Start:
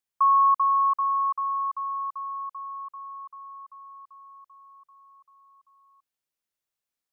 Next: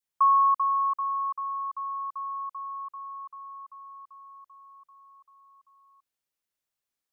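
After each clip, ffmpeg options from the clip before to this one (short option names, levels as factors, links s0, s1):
-af "adynamicequalizer=threshold=0.0251:dfrequency=1100:dqfactor=0.75:tfrequency=1100:tqfactor=0.75:attack=5:release=100:ratio=0.375:range=2.5:mode=cutabove:tftype=bell"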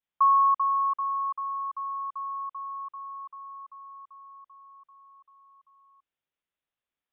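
-af "aresample=8000,aresample=44100"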